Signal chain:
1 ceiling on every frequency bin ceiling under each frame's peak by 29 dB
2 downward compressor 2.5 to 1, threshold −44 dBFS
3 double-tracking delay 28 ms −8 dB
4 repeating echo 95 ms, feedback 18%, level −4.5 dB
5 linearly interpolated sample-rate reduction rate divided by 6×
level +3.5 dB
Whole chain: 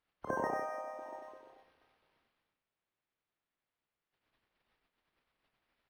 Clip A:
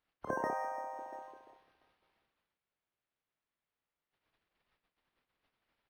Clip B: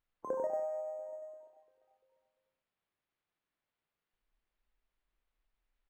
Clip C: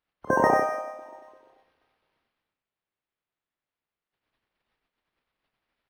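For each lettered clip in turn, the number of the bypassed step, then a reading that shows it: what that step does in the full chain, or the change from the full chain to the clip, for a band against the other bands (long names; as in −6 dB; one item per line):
4, 1 kHz band +2.5 dB
1, change in crest factor −2.5 dB
2, average gain reduction 7.5 dB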